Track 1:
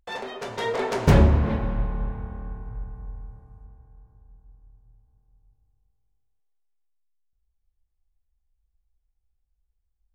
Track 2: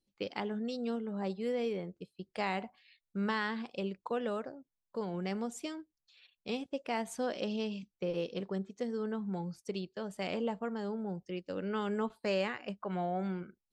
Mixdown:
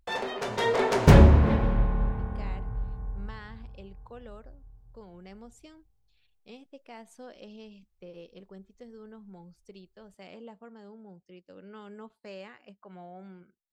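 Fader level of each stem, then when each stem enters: +1.5, -11.5 dB; 0.00, 0.00 s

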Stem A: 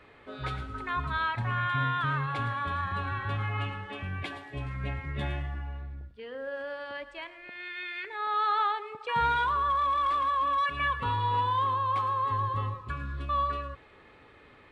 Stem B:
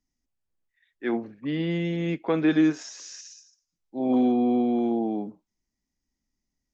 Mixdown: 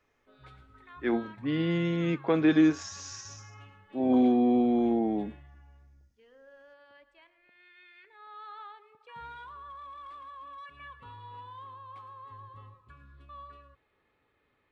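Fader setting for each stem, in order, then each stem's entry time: -18.5, -1.0 dB; 0.00, 0.00 s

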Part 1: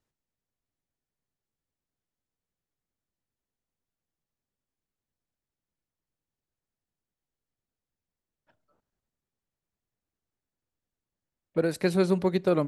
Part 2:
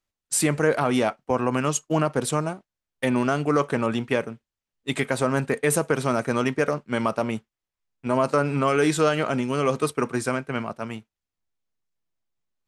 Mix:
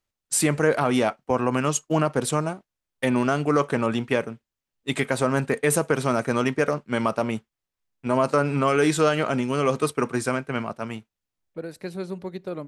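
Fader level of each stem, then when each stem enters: -8.5, +0.5 dB; 0.00, 0.00 s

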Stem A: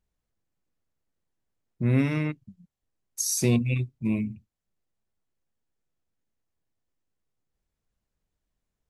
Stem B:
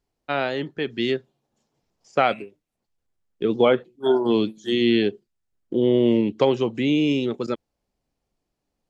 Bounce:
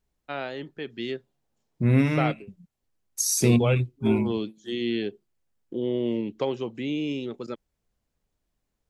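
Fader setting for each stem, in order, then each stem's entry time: +2.5, -8.5 dB; 0.00, 0.00 s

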